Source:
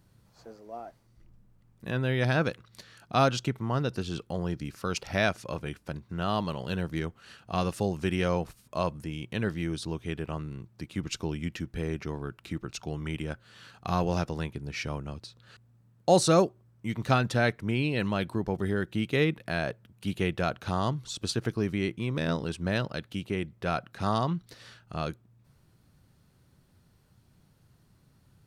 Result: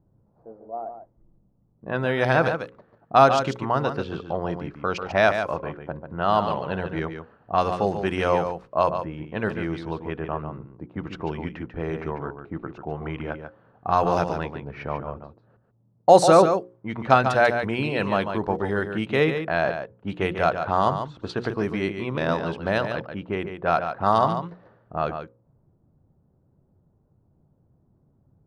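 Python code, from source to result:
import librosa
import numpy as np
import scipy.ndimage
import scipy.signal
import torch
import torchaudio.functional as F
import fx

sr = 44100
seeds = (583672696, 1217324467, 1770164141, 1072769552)

p1 = fx.env_lowpass(x, sr, base_hz=370.0, full_db=-23.0)
p2 = fx.peak_eq(p1, sr, hz=850.0, db=12.0, octaves=2.4)
p3 = fx.hum_notches(p2, sr, base_hz=60, count=9)
p4 = p3 + fx.echo_single(p3, sr, ms=143, db=-8.0, dry=0)
y = p4 * 10.0 ** (-1.0 / 20.0)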